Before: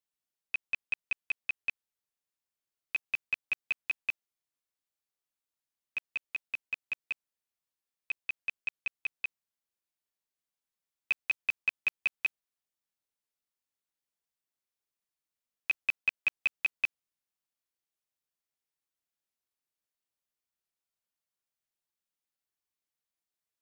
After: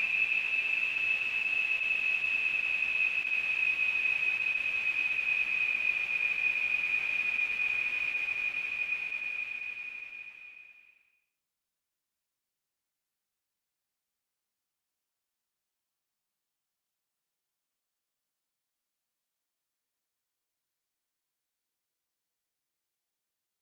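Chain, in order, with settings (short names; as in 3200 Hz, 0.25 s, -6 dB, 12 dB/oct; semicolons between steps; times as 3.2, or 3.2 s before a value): wow and flutter 57 cents; Paulstretch 16×, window 0.50 s, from 16.39; attack slew limiter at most 150 dB/s; gain +3.5 dB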